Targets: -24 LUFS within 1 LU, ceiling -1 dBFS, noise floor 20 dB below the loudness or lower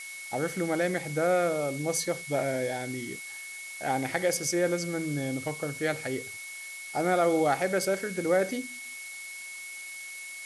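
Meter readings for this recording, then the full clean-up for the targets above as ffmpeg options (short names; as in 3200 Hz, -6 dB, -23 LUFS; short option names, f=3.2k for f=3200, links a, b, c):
steady tone 2200 Hz; tone level -40 dBFS; noise floor -42 dBFS; noise floor target -50 dBFS; loudness -30.0 LUFS; peak -13.5 dBFS; loudness target -24.0 LUFS
-> -af "bandreject=f=2.2k:w=30"
-af "afftdn=nr=8:nf=-42"
-af "volume=6dB"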